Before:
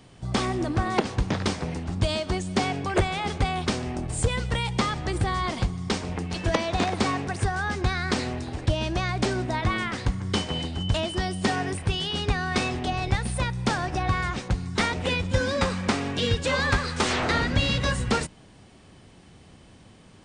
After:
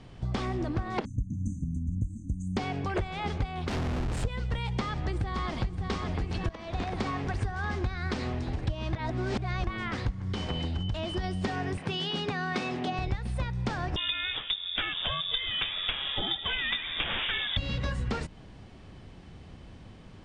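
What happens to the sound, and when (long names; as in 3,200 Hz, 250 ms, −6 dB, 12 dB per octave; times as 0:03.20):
0:01.05–0:02.57: linear-phase brick-wall band-stop 300–6,000 Hz
0:03.68–0:04.25: comparator with hysteresis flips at −38.5 dBFS
0:04.77–0:05.86: delay throw 570 ms, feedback 75%, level −7 dB
0:06.49–0:07.32: fade in, from −14 dB
0:08.93–0:09.67: reverse
0:10.19–0:11.24: downward compressor, threshold −25 dBFS
0:11.77–0:12.99: high-pass filter 150 Hz 24 dB per octave
0:13.96–0:17.57: voice inversion scrambler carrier 3,600 Hz
whole clip: Bessel low-pass filter 4,300 Hz, order 2; low-shelf EQ 78 Hz +11 dB; downward compressor 5 to 1, threshold −28 dBFS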